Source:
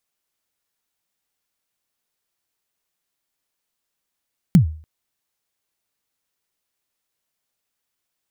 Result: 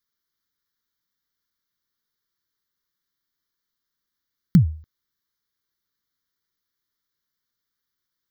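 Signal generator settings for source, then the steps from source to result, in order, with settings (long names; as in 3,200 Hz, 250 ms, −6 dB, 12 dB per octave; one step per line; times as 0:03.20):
synth kick length 0.29 s, from 200 Hz, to 78 Hz, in 108 ms, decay 0.43 s, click on, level −4.5 dB
phaser with its sweep stopped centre 2,600 Hz, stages 6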